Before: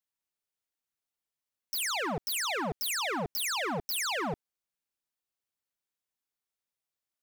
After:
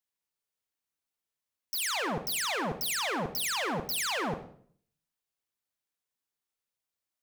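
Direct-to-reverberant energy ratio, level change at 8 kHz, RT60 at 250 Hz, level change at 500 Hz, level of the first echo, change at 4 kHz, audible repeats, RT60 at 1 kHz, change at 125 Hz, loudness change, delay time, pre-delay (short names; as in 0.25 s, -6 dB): 9.0 dB, +0.5 dB, 0.70 s, +0.5 dB, none, +0.5 dB, none, 0.50 s, +0.5 dB, +0.5 dB, none, 37 ms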